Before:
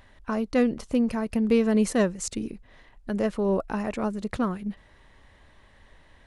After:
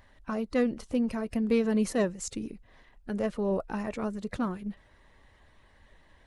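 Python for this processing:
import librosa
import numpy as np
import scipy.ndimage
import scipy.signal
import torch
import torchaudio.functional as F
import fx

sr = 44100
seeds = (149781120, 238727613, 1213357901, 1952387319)

y = fx.spec_quant(x, sr, step_db=15)
y = F.gain(torch.from_numpy(y), -4.0).numpy()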